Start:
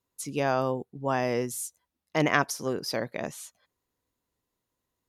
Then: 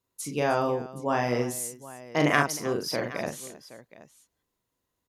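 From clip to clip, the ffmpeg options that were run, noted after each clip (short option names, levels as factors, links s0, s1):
-af "aecho=1:1:41|311|771:0.631|0.141|0.141"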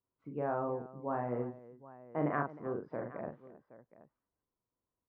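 -af "lowpass=f=1400:w=0.5412,lowpass=f=1400:w=1.3066,volume=0.355"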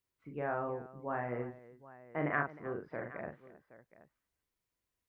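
-af "equalizer=f=125:t=o:w=1:g=-5,equalizer=f=250:t=o:w=1:g=-7,equalizer=f=500:t=o:w=1:g=-5,equalizer=f=1000:t=o:w=1:g=-7,equalizer=f=2000:t=o:w=1:g=6,volume=1.78"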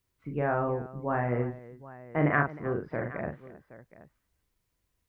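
-af "lowshelf=f=170:g=10.5,volume=2.11"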